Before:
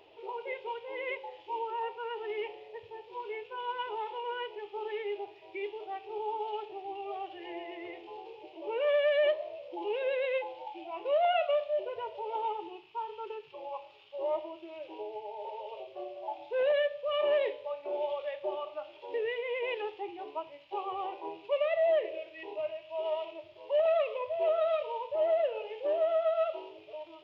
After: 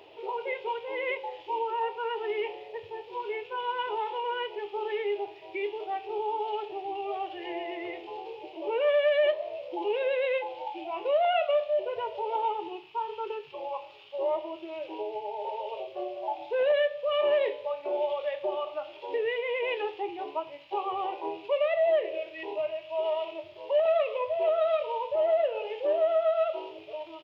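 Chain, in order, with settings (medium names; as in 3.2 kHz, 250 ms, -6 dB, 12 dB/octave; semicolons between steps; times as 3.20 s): high-pass 77 Hz; in parallel at 0 dB: compression, threshold -35 dBFS, peak gain reduction 12 dB; on the sum: doubling 22 ms -14 dB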